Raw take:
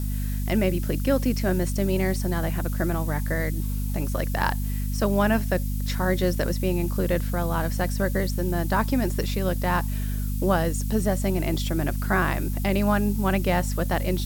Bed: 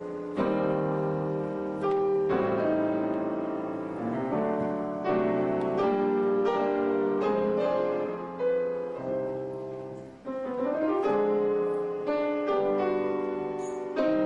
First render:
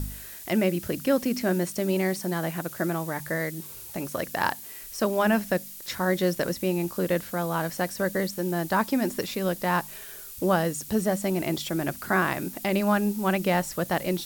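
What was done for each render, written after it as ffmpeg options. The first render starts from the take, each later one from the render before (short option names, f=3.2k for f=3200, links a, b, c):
-af "bandreject=f=50:t=h:w=4,bandreject=f=100:t=h:w=4,bandreject=f=150:t=h:w=4,bandreject=f=200:t=h:w=4,bandreject=f=250:t=h:w=4"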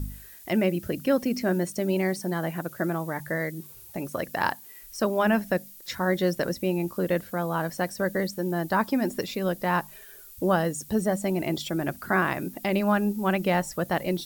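-af "afftdn=nr=9:nf=-42"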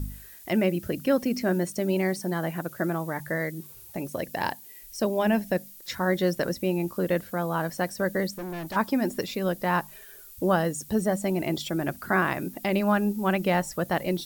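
-filter_complex "[0:a]asettb=1/sr,asplit=3[a][b][c];[a]atrim=end=4.024[d];[b]atrim=start=4.02:end=5.56,asetpts=PTS-STARTPTS,afade=t=in:d=0.004:c=qsin,afade=t=out:st=1.536:d=0.004:c=qsin,equalizer=f=1.3k:t=o:w=0.61:g=-10[e];[c]atrim=start=5.556[f];[d][e]acrossfade=d=0.004:c1=hsin:c2=qsin[g];[g][f]acrossfade=d=0.004:c1=qsin:c2=hsin,asplit=3[h][i][j];[h]afade=t=out:st=8.33:d=0.02[k];[i]volume=32dB,asoftclip=hard,volume=-32dB,afade=t=in:st=8.33:d=0.02,afade=t=out:st=8.75:d=0.02[l];[j]afade=t=in:st=8.75:d=0.02[m];[k][l][m]amix=inputs=3:normalize=0"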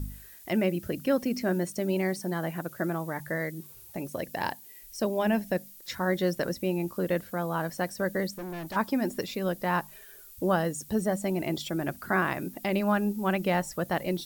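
-af "volume=-2.5dB"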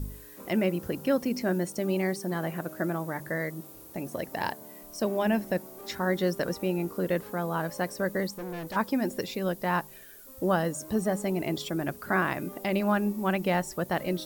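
-filter_complex "[1:a]volume=-20.5dB[a];[0:a][a]amix=inputs=2:normalize=0"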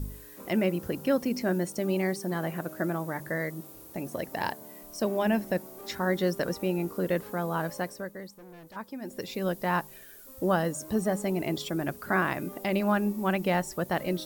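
-filter_complex "[0:a]asplit=3[a][b][c];[a]atrim=end=8.12,asetpts=PTS-STARTPTS,afade=t=out:st=7.7:d=0.42:silence=0.251189[d];[b]atrim=start=8.12:end=9,asetpts=PTS-STARTPTS,volume=-12dB[e];[c]atrim=start=9,asetpts=PTS-STARTPTS,afade=t=in:d=0.42:silence=0.251189[f];[d][e][f]concat=n=3:v=0:a=1"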